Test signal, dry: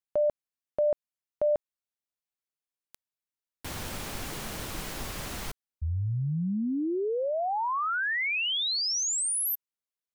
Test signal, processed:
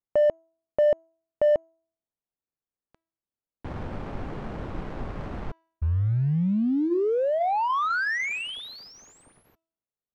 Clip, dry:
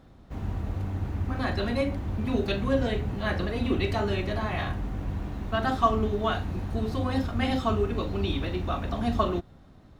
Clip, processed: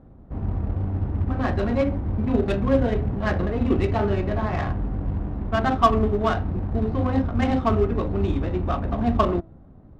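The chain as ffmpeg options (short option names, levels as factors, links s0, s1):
-af "acrusher=bits=5:mode=log:mix=0:aa=0.000001,bandreject=f=327.2:t=h:w=4,bandreject=f=654.4:t=h:w=4,bandreject=f=981.6:t=h:w=4,bandreject=f=1308.8:t=h:w=4,bandreject=f=1636:t=h:w=4,bandreject=f=1963.2:t=h:w=4,bandreject=f=2290.4:t=h:w=4,bandreject=f=2617.6:t=h:w=4,bandreject=f=2944.8:t=h:w=4,bandreject=f=3272:t=h:w=4,bandreject=f=3599.2:t=h:w=4,bandreject=f=3926.4:t=h:w=4,bandreject=f=4253.6:t=h:w=4,bandreject=f=4580.8:t=h:w=4,bandreject=f=4908:t=h:w=4,bandreject=f=5235.2:t=h:w=4,bandreject=f=5562.4:t=h:w=4,bandreject=f=5889.6:t=h:w=4,bandreject=f=6216.8:t=h:w=4,bandreject=f=6544:t=h:w=4,bandreject=f=6871.2:t=h:w=4,bandreject=f=7198.4:t=h:w=4,adynamicsmooth=sensitivity=1.5:basefreq=920,volume=1.88"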